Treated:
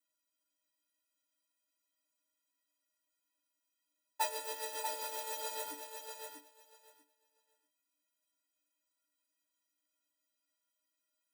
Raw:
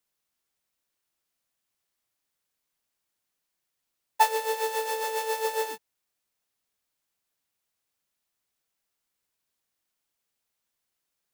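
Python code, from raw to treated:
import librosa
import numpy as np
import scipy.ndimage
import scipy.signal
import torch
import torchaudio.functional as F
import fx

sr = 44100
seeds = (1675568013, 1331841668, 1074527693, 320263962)

y = scipy.signal.sosfilt(scipy.signal.butter(6, 170.0, 'highpass', fs=sr, output='sos'), x)
y = fx.stiff_resonator(y, sr, f0_hz=290.0, decay_s=0.23, stiffness=0.03)
y = fx.echo_feedback(y, sr, ms=640, feedback_pct=16, wet_db=-6.0)
y = y * librosa.db_to_amplitude(8.0)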